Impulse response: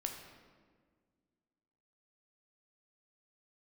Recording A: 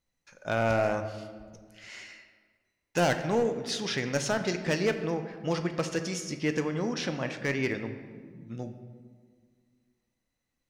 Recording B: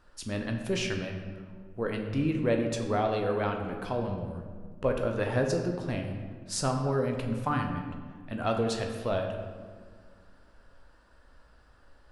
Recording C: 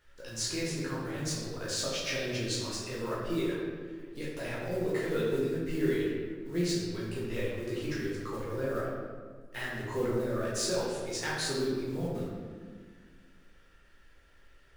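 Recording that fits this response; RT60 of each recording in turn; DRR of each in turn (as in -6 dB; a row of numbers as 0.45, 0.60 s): B; 1.7, 1.7, 1.7 s; 7.0, 2.5, -7.0 dB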